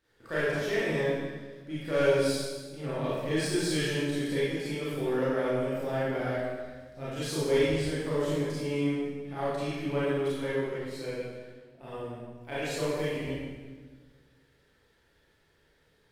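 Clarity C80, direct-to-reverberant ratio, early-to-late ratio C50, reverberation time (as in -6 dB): 0.0 dB, -10.5 dB, -4.0 dB, 1.4 s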